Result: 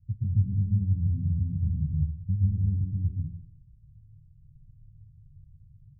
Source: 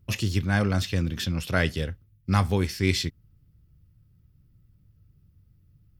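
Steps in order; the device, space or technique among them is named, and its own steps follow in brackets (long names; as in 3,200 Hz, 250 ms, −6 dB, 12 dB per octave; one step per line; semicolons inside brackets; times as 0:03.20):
club heard from the street (brickwall limiter −17 dBFS, peak gain reduction 10 dB; low-pass filter 150 Hz 24 dB per octave; convolution reverb RT60 0.70 s, pre-delay 116 ms, DRR −5.5 dB)
0:01.64–0:02.36: comb filter 1.1 ms, depth 62%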